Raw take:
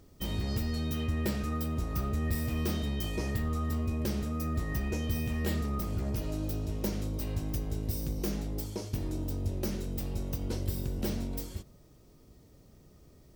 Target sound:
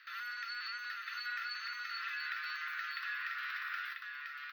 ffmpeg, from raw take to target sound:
ffmpeg -i in.wav -af "highpass=frequency=230:width=0.5412,highpass=frequency=230:width=1.3066,equalizer=frequency=280:width_type=q:width=4:gain=-7,equalizer=frequency=490:width_type=q:width=4:gain=-8,equalizer=frequency=790:width_type=q:width=4:gain=-4,equalizer=frequency=1800:width_type=q:width=4:gain=8,equalizer=frequency=3000:width_type=q:width=4:gain=7,lowpass=frequency=3600:width=0.5412,lowpass=frequency=3600:width=1.3066,acompressor=threshold=-46dB:ratio=5,asuperstop=centerf=2600:order=8:qfactor=0.7,afreqshift=260,asetrate=130095,aresample=44100,aecho=1:1:992:0.631,volume=8dB" out.wav

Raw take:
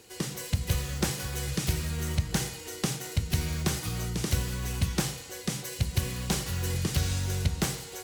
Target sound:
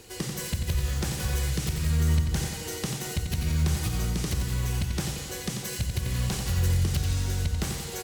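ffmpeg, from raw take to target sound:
ffmpeg -i in.wav -filter_complex "[0:a]lowshelf=frequency=77:gain=12,alimiter=limit=-23dB:level=0:latency=1:release=248,asplit=2[link_01][link_02];[link_02]aecho=0:1:90|180|270|360|450|540|630:0.447|0.246|0.135|0.0743|0.0409|0.0225|0.0124[link_03];[link_01][link_03]amix=inputs=2:normalize=0,volume=4dB" out.wav

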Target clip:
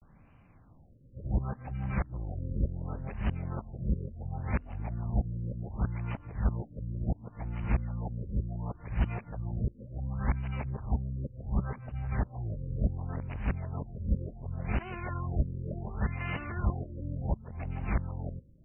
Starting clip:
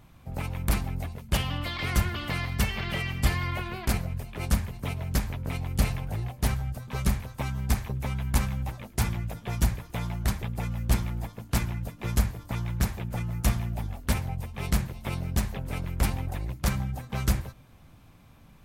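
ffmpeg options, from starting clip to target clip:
ffmpeg -i in.wav -af "areverse,afftfilt=real='re*lt(b*sr/1024,560*pow(3100/560,0.5+0.5*sin(2*PI*0.69*pts/sr)))':imag='im*lt(b*sr/1024,560*pow(3100/560,0.5+0.5*sin(2*PI*0.69*pts/sr)))':win_size=1024:overlap=0.75,volume=-4dB" out.wav

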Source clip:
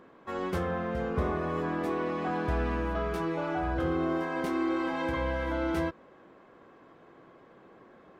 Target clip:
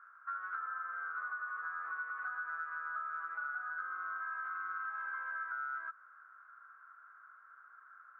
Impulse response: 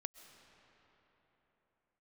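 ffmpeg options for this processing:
-af "asuperpass=centerf=1400:order=4:qfactor=5.8,acompressor=threshold=-50dB:ratio=6,volume=12.5dB"

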